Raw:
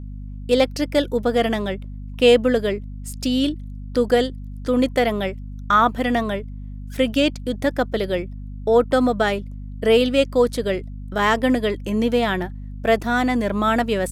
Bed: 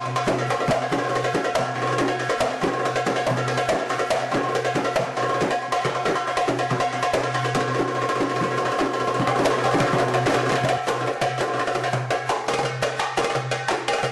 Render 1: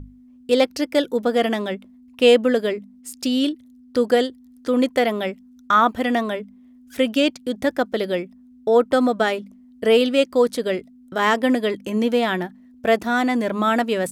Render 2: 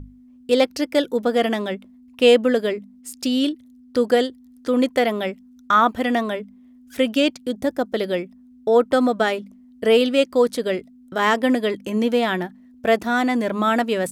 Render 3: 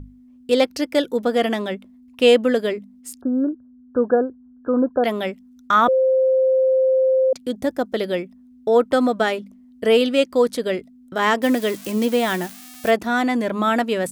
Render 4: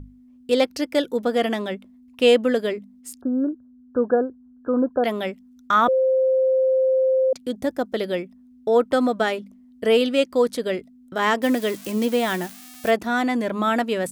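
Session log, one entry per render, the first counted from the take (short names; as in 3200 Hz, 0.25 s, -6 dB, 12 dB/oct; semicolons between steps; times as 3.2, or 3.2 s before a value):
notches 50/100/150/200 Hz
7.51–7.94 bell 2200 Hz -8 dB 2.1 oct
3.21–5.04 brick-wall FIR low-pass 1700 Hz; 5.88–7.33 bleep 523 Hz -13.5 dBFS; 11.42–12.91 switching spikes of -22.5 dBFS
gain -2 dB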